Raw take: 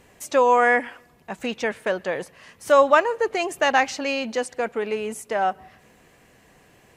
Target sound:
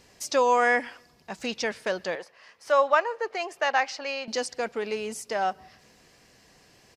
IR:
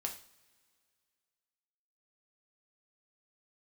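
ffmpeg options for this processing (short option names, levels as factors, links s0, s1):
-filter_complex "[0:a]asettb=1/sr,asplit=3[s0][s1][s2];[s0]atrim=end=2.154[s3];[s1]atrim=start=2.15:end=4.28,asetpts=PTS-STARTPTS,afade=t=in:d=0.004:c=qsin,afade=t=out:st=2.126:d=0.004:c=qsin,acrossover=split=420 2700:gain=0.141 1 0.251[s4][s5][s6];[s4][s5][s6]amix=inputs=3:normalize=0[s7];[s2]atrim=start=4.276[s8];[s3][s7]acrossfade=d=0.004:c1=hsin:c2=qsin[s9];[s9][s8]acrossfade=d=0.004:c1=qsin:c2=hsin,aresample=32000,aresample=44100,equalizer=f=5000:t=o:w=0.75:g=14.5,volume=0.596"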